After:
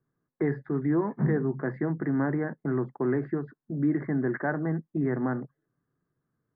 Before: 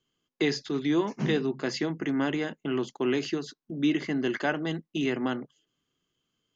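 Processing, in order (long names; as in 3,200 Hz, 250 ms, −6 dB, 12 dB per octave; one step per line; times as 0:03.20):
elliptic low-pass filter 1,800 Hz, stop band 40 dB
parametric band 130 Hz +9.5 dB 0.85 octaves
in parallel at −2 dB: brickwall limiter −20.5 dBFS, peak gain reduction 7 dB
on the sum: level −4.5 dB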